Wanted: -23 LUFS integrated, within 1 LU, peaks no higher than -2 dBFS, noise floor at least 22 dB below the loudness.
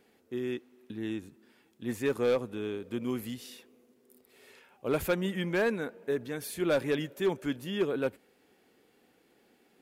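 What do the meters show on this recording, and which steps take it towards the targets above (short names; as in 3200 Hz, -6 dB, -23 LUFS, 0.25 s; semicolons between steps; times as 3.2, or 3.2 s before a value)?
clipped 0.4%; flat tops at -21.0 dBFS; loudness -32.5 LUFS; peak -21.0 dBFS; loudness target -23.0 LUFS
-> clip repair -21 dBFS; gain +9.5 dB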